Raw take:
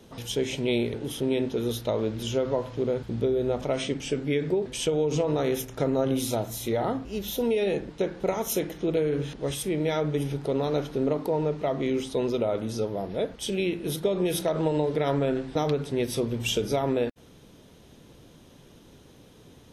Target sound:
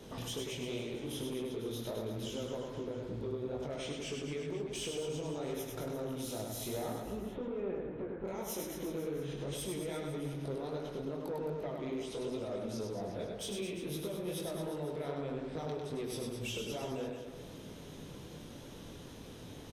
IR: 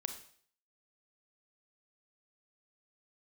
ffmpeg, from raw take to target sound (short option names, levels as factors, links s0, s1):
-filter_complex "[0:a]asettb=1/sr,asplit=3[s0][s1][s2];[s0]atrim=end=7.104[s3];[s1]atrim=start=7.1:end=8.25,asetpts=PTS-STARTPTS,afade=t=in:d=0.004:c=qsin,afade=t=out:st=1.146:d=0.004:c=qsin,lowpass=f=1900:w=0.5412,lowpass=f=1900:w=1.3066[s4];[s2]atrim=start=8.246[s5];[s3][s4]acrossfade=d=0.004:c1=hsin:c2=qsin[s6];[s6][s5]acrossfade=d=0.004:c1=qsin:c2=hsin,acompressor=threshold=0.00891:ratio=4,flanger=delay=18.5:depth=5.9:speed=2.5,asoftclip=type=tanh:threshold=0.0141,aecho=1:1:100|215|347.2|499.3|674.2:0.631|0.398|0.251|0.158|0.1,volume=1.68"